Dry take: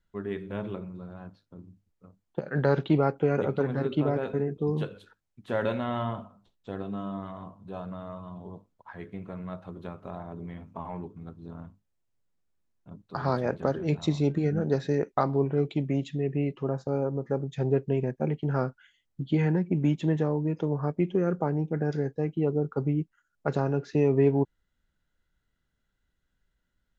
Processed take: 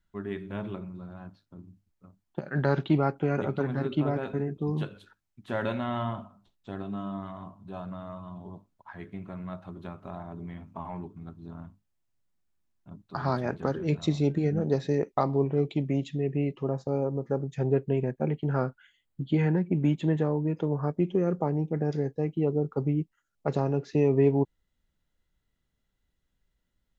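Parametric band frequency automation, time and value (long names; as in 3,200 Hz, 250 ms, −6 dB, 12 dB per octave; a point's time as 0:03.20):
parametric band −10.5 dB 0.26 octaves
0:13.44 480 Hz
0:14.57 1,500 Hz
0:17.20 1,500 Hz
0:17.73 5,600 Hz
0:20.67 5,600 Hz
0:21.15 1,500 Hz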